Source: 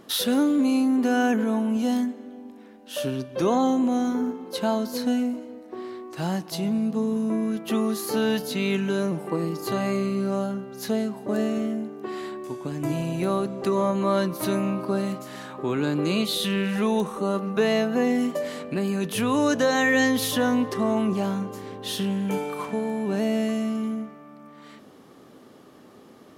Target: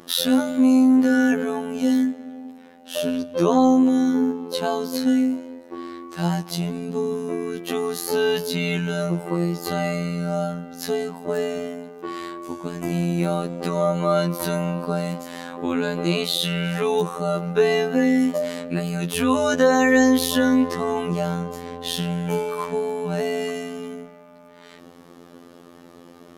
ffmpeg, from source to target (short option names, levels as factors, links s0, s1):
-af "afftfilt=real='hypot(re,im)*cos(PI*b)':imag='0':win_size=2048:overlap=0.75,acontrast=34,volume=1.19"